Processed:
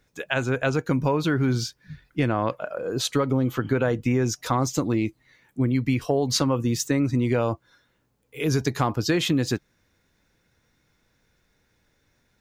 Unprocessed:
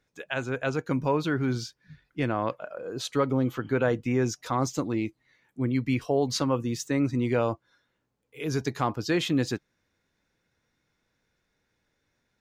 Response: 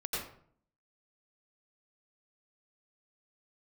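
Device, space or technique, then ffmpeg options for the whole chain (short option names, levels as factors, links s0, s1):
ASMR close-microphone chain: -af "lowshelf=f=120:g=6,acompressor=threshold=0.0562:ratio=6,highshelf=f=9700:g=7,volume=2.11"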